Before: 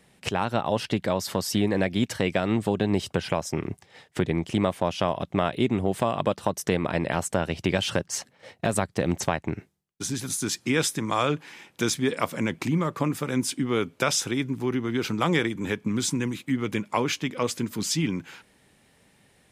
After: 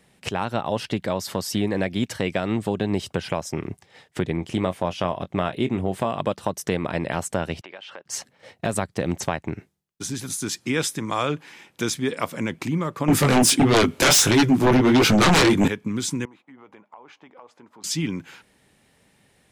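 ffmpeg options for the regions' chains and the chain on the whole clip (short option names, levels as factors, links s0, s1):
-filter_complex "[0:a]asettb=1/sr,asplit=3[s0][s1][s2];[s0]atrim=end=4.374[s3];[s1]atrim=start=4.37:end=6.12,asetpts=PTS-STARTPTS,afade=t=in:d=0.004:c=qsin,afade=t=out:st=1.746:d=0.004:c=qsin,asplit=2[s4][s5];[s5]adelay=22,volume=0.237[s6];[s4][s6]amix=inputs=2:normalize=0,atrim=end_sample=77175,adynamicequalizer=threshold=0.00794:dfrequency=3400:dqfactor=0.7:tfrequency=3400:tqfactor=0.7:attack=5:release=100:ratio=0.375:range=2:mode=cutabove:tftype=highshelf[s7];[s2]atrim=start=6.116[s8];[s3][s7]acrossfade=d=0.004:c1=hsin:c2=qsin[s9];[s9][s8]acrossfade=d=0.004:c1=qsin:c2=hsin,asettb=1/sr,asplit=3[s10][s11][s12];[s10]atrim=end=7.614[s13];[s11]atrim=start=7.61:end=8.06,asetpts=PTS-STARTPTS,afade=t=in:d=0.004:c=qsin,afade=t=out:st=0.446:d=0.004:c=qsin,acompressor=threshold=0.0158:ratio=2.5:attack=3.2:release=140:knee=1:detection=peak,highpass=550,lowpass=2800[s14];[s12]atrim=start=8.056[s15];[s13][s14]acrossfade=d=0.004:c1=hsin:c2=qsin[s16];[s16][s15]acrossfade=d=0.004:c1=qsin:c2=hsin,asettb=1/sr,asplit=3[s17][s18][s19];[s17]atrim=end=13.084[s20];[s18]atrim=start=13.08:end=15.68,asetpts=PTS-STARTPTS,afade=t=in:d=0.004:c=qsin,afade=t=out:st=2.596:d=0.004:c=qsin,flanger=delay=17.5:depth=7:speed=1.5,aeval=exprs='0.251*sin(PI/2*5.01*val(0)/0.251)':c=same[s21];[s19]atrim=start=15.676[s22];[s20][s21]acrossfade=d=0.004:c1=hsin:c2=qsin[s23];[s23][s22]acrossfade=d=0.004:c1=qsin:c2=hsin,asettb=1/sr,asplit=3[s24][s25][s26];[s24]atrim=end=16.254[s27];[s25]atrim=start=16.25:end=17.84,asetpts=PTS-STARTPTS,afade=t=in:d=0.004:c=qsin,afade=t=out:st=1.586:d=0.004:c=qsin,bandpass=f=830:t=q:w=2.8,acompressor=threshold=0.00708:ratio=4:attack=3.2:release=140:knee=1:detection=peak[s28];[s26]atrim=start=17.836[s29];[s27][s28]acrossfade=d=0.004:c1=hsin:c2=qsin[s30];[s30][s29]acrossfade=d=0.004:c1=qsin:c2=hsin"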